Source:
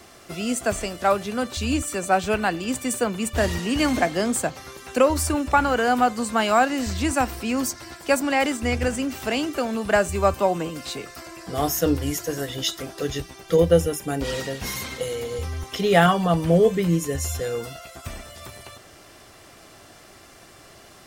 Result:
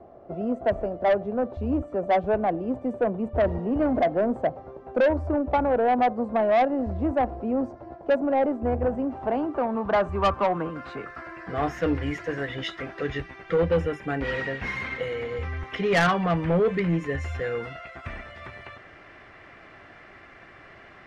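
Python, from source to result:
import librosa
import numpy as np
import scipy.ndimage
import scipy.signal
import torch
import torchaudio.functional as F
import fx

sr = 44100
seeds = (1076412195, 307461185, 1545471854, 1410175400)

y = fx.filter_sweep_lowpass(x, sr, from_hz=650.0, to_hz=2000.0, start_s=8.6, end_s=11.83, q=2.6)
y = 10.0 ** (-14.0 / 20.0) * np.tanh(y / 10.0 ** (-14.0 / 20.0))
y = F.gain(torch.from_numpy(y), -2.0).numpy()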